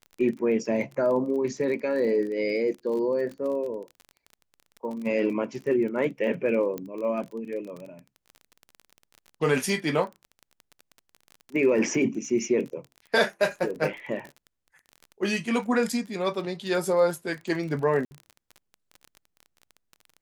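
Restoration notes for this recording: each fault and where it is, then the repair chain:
crackle 26 per s -34 dBFS
6.78 s: pop -19 dBFS
18.05–18.11 s: dropout 60 ms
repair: de-click; interpolate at 18.05 s, 60 ms

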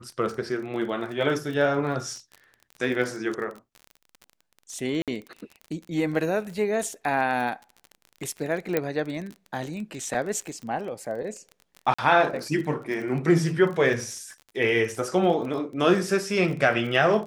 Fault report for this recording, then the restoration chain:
crackle 30 per s -33 dBFS
5.02–5.08 s: dropout 57 ms
8.77 s: pop -10 dBFS
11.94–11.98 s: dropout 45 ms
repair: de-click; interpolate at 5.02 s, 57 ms; interpolate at 11.94 s, 45 ms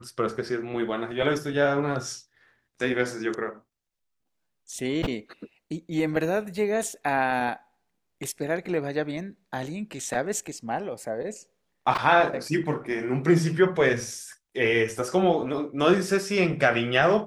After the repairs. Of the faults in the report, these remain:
8.77 s: pop

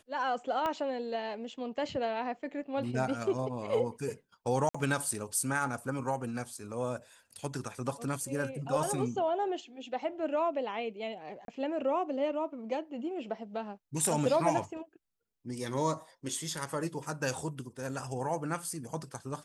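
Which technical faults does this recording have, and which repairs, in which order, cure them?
0.66 s: pop -20 dBFS
4.69–4.75 s: dropout 55 ms
11.45–11.48 s: dropout 32 ms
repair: de-click; interpolate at 4.69 s, 55 ms; interpolate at 11.45 s, 32 ms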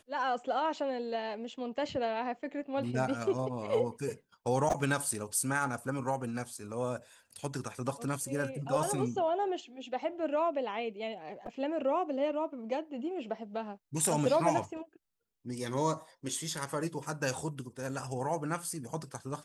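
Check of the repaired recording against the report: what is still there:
0.66 s: pop

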